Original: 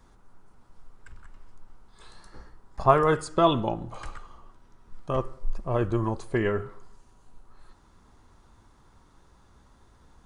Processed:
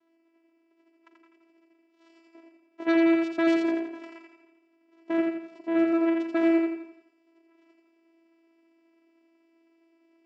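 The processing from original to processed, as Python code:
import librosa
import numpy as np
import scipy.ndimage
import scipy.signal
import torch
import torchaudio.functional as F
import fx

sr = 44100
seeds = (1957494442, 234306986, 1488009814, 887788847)

p1 = fx.law_mismatch(x, sr, coded='A')
p2 = fx.notch(p1, sr, hz=1100.0, q=5.6)
p3 = fx.rider(p2, sr, range_db=10, speed_s=2.0)
p4 = p2 + F.gain(torch.from_numpy(p3), -0.5).numpy()
p5 = fx.vocoder(p4, sr, bands=4, carrier='saw', carrier_hz=331.0)
p6 = 10.0 ** (-19.5 / 20.0) * np.tanh(p5 / 10.0 ** (-19.5 / 20.0))
p7 = fx.bandpass_edges(p6, sr, low_hz=150.0, high_hz=5300.0)
y = p7 + fx.echo_feedback(p7, sr, ms=85, feedback_pct=45, wet_db=-3.5, dry=0)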